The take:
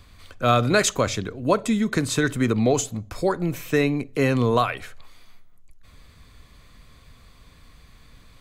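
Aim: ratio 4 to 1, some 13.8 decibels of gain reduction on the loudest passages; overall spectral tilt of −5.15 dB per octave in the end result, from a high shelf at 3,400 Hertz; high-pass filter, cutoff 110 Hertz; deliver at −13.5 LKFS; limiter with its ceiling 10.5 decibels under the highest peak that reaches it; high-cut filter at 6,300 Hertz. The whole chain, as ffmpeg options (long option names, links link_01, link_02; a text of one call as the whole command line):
ffmpeg -i in.wav -af "highpass=110,lowpass=6300,highshelf=frequency=3400:gain=-3.5,acompressor=threshold=-32dB:ratio=4,volume=25.5dB,alimiter=limit=-4dB:level=0:latency=1" out.wav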